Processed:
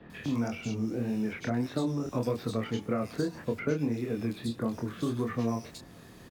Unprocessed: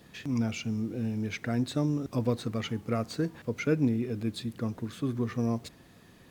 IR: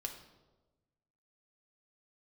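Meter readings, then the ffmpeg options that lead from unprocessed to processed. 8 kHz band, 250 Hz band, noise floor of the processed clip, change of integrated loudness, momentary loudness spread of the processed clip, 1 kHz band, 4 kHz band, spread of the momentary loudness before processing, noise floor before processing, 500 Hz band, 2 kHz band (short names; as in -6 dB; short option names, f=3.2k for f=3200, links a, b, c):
-1.5 dB, -1.0 dB, -51 dBFS, -1.0 dB, 3 LU, +2.0 dB, -3.0 dB, 6 LU, -56 dBFS, +1.0 dB, -1.0 dB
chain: -filter_complex "[0:a]acrossover=split=2700[a][b];[b]adelay=100[c];[a][c]amix=inputs=2:normalize=0,flanger=delay=22.5:depth=4.9:speed=1.7,acrossover=split=250|540|1500[d][e][f][g];[d]acompressor=threshold=-44dB:ratio=4[h];[e]acompressor=threshold=-41dB:ratio=4[i];[f]acompressor=threshold=-45dB:ratio=4[j];[g]acompressor=threshold=-54dB:ratio=4[k];[h][i][j][k]amix=inputs=4:normalize=0,volume=8.5dB"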